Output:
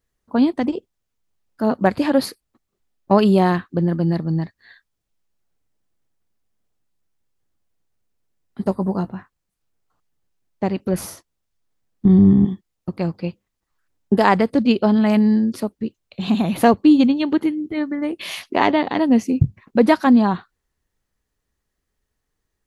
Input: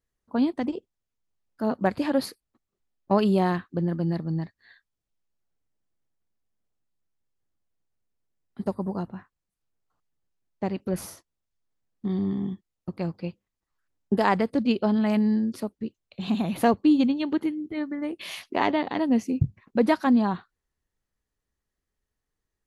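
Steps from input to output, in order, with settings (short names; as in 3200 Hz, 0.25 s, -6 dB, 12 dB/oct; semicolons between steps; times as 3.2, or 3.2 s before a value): 8.66–9.15 doubler 16 ms -11 dB; 12.05–12.45 RIAA curve playback; gain +7 dB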